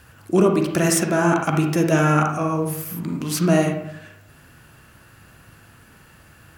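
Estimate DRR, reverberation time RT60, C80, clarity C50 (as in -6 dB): 2.5 dB, 0.75 s, 8.0 dB, 4.5 dB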